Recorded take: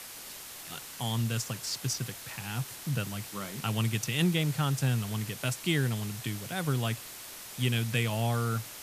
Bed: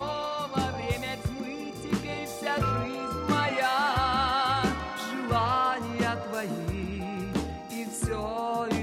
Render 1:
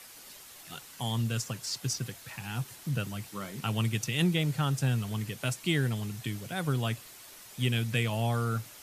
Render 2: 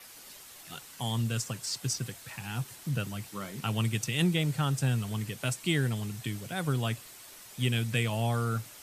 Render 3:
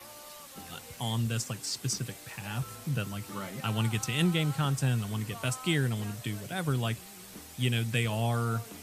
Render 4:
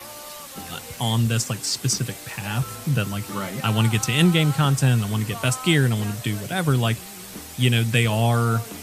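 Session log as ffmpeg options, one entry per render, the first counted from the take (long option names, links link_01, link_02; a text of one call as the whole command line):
ffmpeg -i in.wav -af "afftdn=noise_reduction=7:noise_floor=-45" out.wav
ffmpeg -i in.wav -af "adynamicequalizer=threshold=0.00126:dfrequency=8200:dqfactor=6.8:tfrequency=8200:tqfactor=6.8:attack=5:release=100:ratio=0.375:range=3:mode=boostabove:tftype=bell" out.wav
ffmpeg -i in.wav -i bed.wav -filter_complex "[1:a]volume=-20dB[link_01];[0:a][link_01]amix=inputs=2:normalize=0" out.wav
ffmpeg -i in.wav -af "volume=9.5dB" out.wav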